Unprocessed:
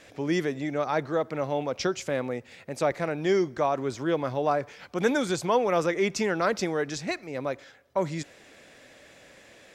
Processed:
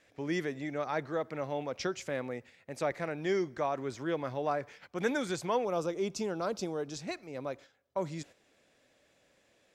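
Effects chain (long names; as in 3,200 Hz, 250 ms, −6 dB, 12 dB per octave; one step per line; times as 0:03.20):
parametric band 1,900 Hz +3 dB 0.65 octaves, from 0:05.65 −15 dB, from 0:06.95 −4 dB
noise gate −44 dBFS, range −8 dB
level −7 dB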